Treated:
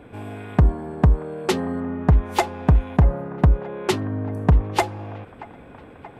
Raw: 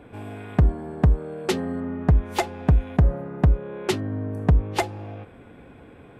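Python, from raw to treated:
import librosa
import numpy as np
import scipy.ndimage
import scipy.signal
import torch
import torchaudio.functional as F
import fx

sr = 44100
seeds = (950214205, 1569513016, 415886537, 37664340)

p1 = fx.dynamic_eq(x, sr, hz=1000.0, q=2.3, threshold_db=-45.0, ratio=4.0, max_db=5)
p2 = p1 + fx.echo_wet_bandpass(p1, sr, ms=630, feedback_pct=72, hz=1100.0, wet_db=-18.0, dry=0)
y = p2 * 10.0 ** (2.0 / 20.0)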